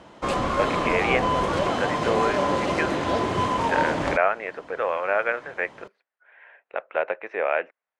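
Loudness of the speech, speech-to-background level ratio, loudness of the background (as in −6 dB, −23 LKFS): −27.5 LKFS, −3.0 dB, −24.5 LKFS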